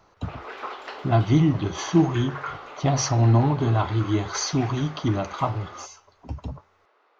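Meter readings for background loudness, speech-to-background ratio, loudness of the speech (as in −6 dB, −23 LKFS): −39.0 LKFS, 16.0 dB, −23.0 LKFS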